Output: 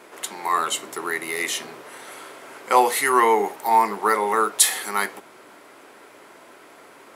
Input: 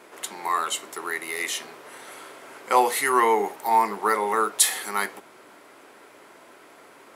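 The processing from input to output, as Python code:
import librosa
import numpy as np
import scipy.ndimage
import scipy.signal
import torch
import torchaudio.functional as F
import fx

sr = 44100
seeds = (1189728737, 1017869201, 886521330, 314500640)

y = fx.low_shelf(x, sr, hz=290.0, db=7.5, at=(0.52, 1.83))
y = y * 10.0 ** (2.5 / 20.0)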